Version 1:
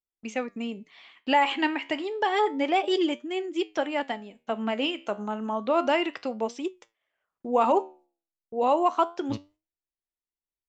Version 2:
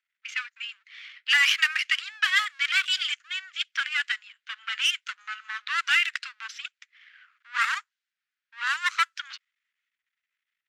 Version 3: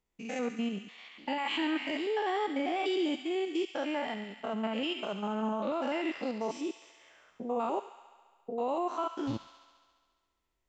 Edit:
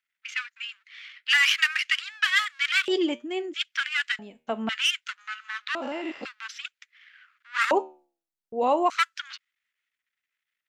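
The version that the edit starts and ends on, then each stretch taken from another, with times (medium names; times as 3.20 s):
2
2.88–3.54 s: from 1
4.19–4.69 s: from 1
5.75–6.25 s: from 3
7.71–8.90 s: from 1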